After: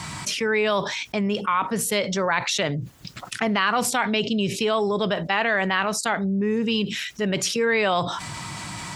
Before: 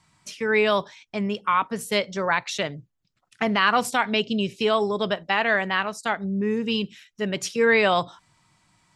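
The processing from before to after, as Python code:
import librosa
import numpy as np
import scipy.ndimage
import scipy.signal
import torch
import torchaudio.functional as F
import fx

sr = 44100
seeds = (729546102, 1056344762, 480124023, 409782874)

y = scipy.signal.sosfilt(scipy.signal.butter(2, 54.0, 'highpass', fs=sr, output='sos'), x)
y = fx.env_flatten(y, sr, amount_pct=70)
y = F.gain(torch.from_numpy(y), -3.5).numpy()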